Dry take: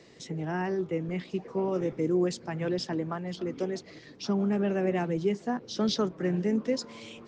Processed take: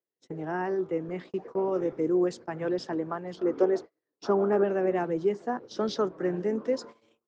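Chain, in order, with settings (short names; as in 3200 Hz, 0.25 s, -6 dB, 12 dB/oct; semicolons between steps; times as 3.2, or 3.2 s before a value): gate -41 dBFS, range -41 dB; band shelf 710 Hz +8.5 dB 2.8 oct, from 3.43 s +15.5 dB, from 4.63 s +9 dB; gain -6.5 dB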